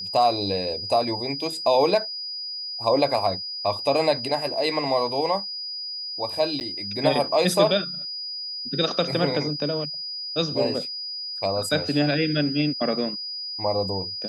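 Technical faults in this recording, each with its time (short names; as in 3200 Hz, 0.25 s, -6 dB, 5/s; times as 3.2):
tone 4900 Hz -30 dBFS
6.6–6.61 gap 9.5 ms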